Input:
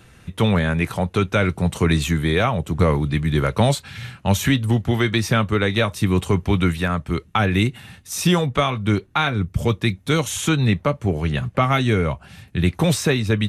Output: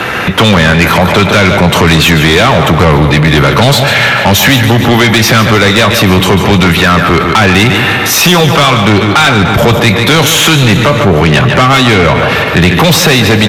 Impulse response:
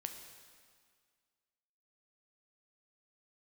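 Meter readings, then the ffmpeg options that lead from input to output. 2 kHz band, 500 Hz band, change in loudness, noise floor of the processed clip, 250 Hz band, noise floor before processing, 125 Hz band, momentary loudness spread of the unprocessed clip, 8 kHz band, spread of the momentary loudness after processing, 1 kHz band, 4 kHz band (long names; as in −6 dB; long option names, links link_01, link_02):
+18.0 dB, +13.5 dB, +14.5 dB, −11 dBFS, +12.5 dB, −50 dBFS, +11.5 dB, 5 LU, +16.0 dB, 2 LU, +16.5 dB, +19.0 dB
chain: -filter_complex "[0:a]aemphasis=mode=reproduction:type=75kf,asplit=2[link_01][link_02];[1:a]atrim=start_sample=2205[link_03];[link_02][link_03]afir=irnorm=-1:irlink=0,volume=-10dB[link_04];[link_01][link_04]amix=inputs=2:normalize=0,acrossover=split=180|3000[link_05][link_06][link_07];[link_06]acompressor=threshold=-28dB:ratio=6[link_08];[link_05][link_08][link_07]amix=inputs=3:normalize=0,aexciter=amount=9.7:drive=5.1:freq=12000,asplit=2[link_09][link_10];[link_10]highpass=frequency=720:poles=1,volume=25dB,asoftclip=type=tanh:threshold=-7.5dB[link_11];[link_09][link_11]amix=inputs=2:normalize=0,lowpass=frequency=3300:poles=1,volume=-6dB,lowshelf=frequency=210:gain=-6.5,aecho=1:1:147|294|441|588|735:0.316|0.142|0.064|0.0288|0.013,aresample=32000,aresample=44100,asoftclip=type=tanh:threshold=-16.5dB,alimiter=level_in=24.5dB:limit=-1dB:release=50:level=0:latency=1,volume=-1dB"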